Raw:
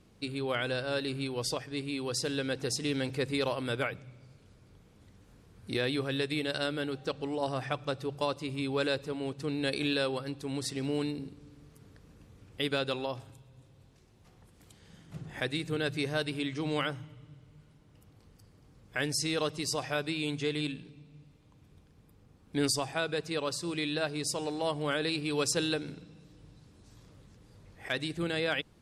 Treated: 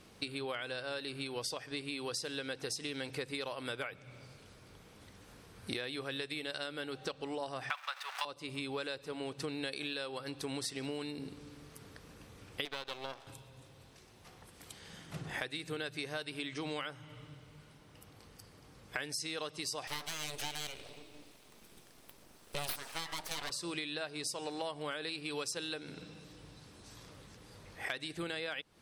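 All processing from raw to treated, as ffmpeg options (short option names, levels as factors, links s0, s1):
-filter_complex "[0:a]asettb=1/sr,asplit=3[s0][s1][s2];[s0]atrim=end=7.704[s3];[s1]atrim=start=7.7:end=8.25,asetpts=PTS-STARTPTS,afade=t=in:d=0.004:c=qsin,afade=t=out:st=0.546:d=0.004:c=qsin,aeval=exprs='val(0)+0.5*0.00944*sgn(val(0))':c=same,highpass=f=850:w=0.5412,highpass=f=850:w=1.3066,equalizer=f=1700:w=0.38:g=14[s4];[s2]atrim=start=8.246[s5];[s3][s4]acrossfade=d=0.004:c1=hsin:c2=qsin[s6];[s6][s5]acrossfade=d=0.004:c1=qsin:c2=hsin,asettb=1/sr,asplit=3[s7][s8][s9];[s7]atrim=end=12.654[s10];[s8]atrim=start=12.65:end=13.27,asetpts=PTS-STARTPTS,afade=t=in:d=0.004:c=qsin,afade=t=out:st=0.616:d=0.004:c=qsin,highpass=260,lowpass=5400,aeval=exprs='max(val(0),0)':c=same[s11];[s9]atrim=start=13.266[s12];[s10][s11]acrossfade=d=0.004:c1=hsin:c2=qsin[s13];[s13][s12]acrossfade=d=0.004:c1=qsin:c2=hsin,asettb=1/sr,asplit=3[s14][s15][s16];[s14]atrim=end=19.874[s17];[s15]atrim=start=19.87:end=23.5,asetpts=PTS-STARTPTS,afade=t=in:d=0.004:c=qsin,afade=t=out:st=3.626:d=0.004:c=qsin,highshelf=f=5100:g=11,bandreject=f=52.72:t=h:w=4,bandreject=f=105.44:t=h:w=4,bandreject=f=158.16:t=h:w=4,bandreject=f=210.88:t=h:w=4,bandreject=f=263.6:t=h:w=4,bandreject=f=316.32:t=h:w=4,bandreject=f=369.04:t=h:w=4,bandreject=f=421.76:t=h:w=4,bandreject=f=474.48:t=h:w=4,bandreject=f=527.2:t=h:w=4,bandreject=f=579.92:t=h:w=4,bandreject=f=632.64:t=h:w=4,bandreject=f=685.36:t=h:w=4,bandreject=f=738.08:t=h:w=4,bandreject=f=790.8:t=h:w=4,bandreject=f=843.52:t=h:w=4,bandreject=f=896.24:t=h:w=4,bandreject=f=948.96:t=h:w=4,bandreject=f=1001.68:t=h:w=4,bandreject=f=1054.4:t=h:w=4,bandreject=f=1107.12:t=h:w=4,bandreject=f=1159.84:t=h:w=4,bandreject=f=1212.56:t=h:w=4,bandreject=f=1265.28:t=h:w=4,bandreject=f=1318:t=h:w=4,bandreject=f=1370.72:t=h:w=4,bandreject=f=1423.44:t=h:w=4,bandreject=f=1476.16:t=h:w=4,bandreject=f=1528.88:t=h:w=4,aeval=exprs='abs(val(0))':c=same[s18];[s16]atrim=start=23.496[s19];[s17][s18]acrossfade=d=0.004:c1=hsin:c2=qsin[s20];[s20][s19]acrossfade=d=0.004:c1=qsin:c2=hsin,lowshelf=f=360:g=-11.5,bandreject=f=7000:w=15,acompressor=threshold=0.00562:ratio=10,volume=2.82"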